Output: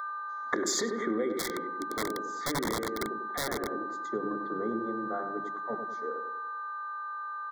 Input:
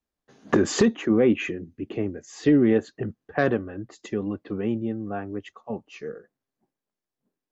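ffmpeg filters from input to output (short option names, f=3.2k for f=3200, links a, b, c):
-filter_complex "[0:a]highshelf=f=2.6k:g=10.5,aeval=exprs='val(0)+0.0282*sin(2*PI*1200*n/s)':c=same,highpass=340,bandreject=f=50:t=h:w=6,bandreject=f=100:t=h:w=6,bandreject=f=150:t=h:w=6,bandreject=f=200:t=h:w=6,bandreject=f=250:t=h:w=6,bandreject=f=300:t=h:w=6,bandreject=f=350:t=h:w=6,bandreject=f=400:t=h:w=6,bandreject=f=450:t=h:w=6,afwtdn=0.0282,equalizer=f=800:t=o:w=0.66:g=-5.5,asplit=2[a][b];[b]adelay=96,lowpass=f=1.2k:p=1,volume=-6dB,asplit=2[c][d];[d]adelay=96,lowpass=f=1.2k:p=1,volume=0.51,asplit=2[e][f];[f]adelay=96,lowpass=f=1.2k:p=1,volume=0.51,asplit=2[g][h];[h]adelay=96,lowpass=f=1.2k:p=1,volume=0.51,asplit=2[i][j];[j]adelay=96,lowpass=f=1.2k:p=1,volume=0.51,asplit=2[k][l];[l]adelay=96,lowpass=f=1.2k:p=1,volume=0.51[m];[a][c][e][g][i][k][m]amix=inputs=7:normalize=0,acompressor=threshold=-26dB:ratio=16,asettb=1/sr,asplit=3[n][o][p];[n]atrim=end=1.394[q];[o]atrim=start=1.39:end=3.72,asetpts=PTS-STARTPTS,afade=t=in:d=0.004:c=qsin,afade=t=out:st=2.326:d=0.004:c=qsin,aeval=exprs='(mod(16.8*val(0)+1,2)-1)/16.8':c=same[r];[p]atrim=start=3.716[s];[q][r]acrossfade=d=0.004:c1=hsin:c2=qsin[t];[t][s]acrossfade=d=0.004:c1=qsin:c2=hsin,asuperstop=centerf=2700:order=20:qfactor=2.6"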